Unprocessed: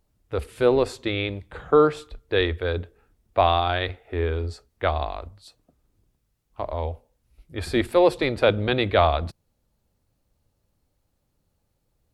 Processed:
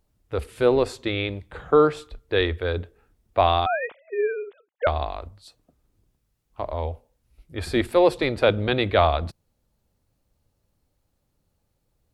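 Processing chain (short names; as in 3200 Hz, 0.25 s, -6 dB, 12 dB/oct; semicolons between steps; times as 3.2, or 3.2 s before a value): 3.66–4.87 sine-wave speech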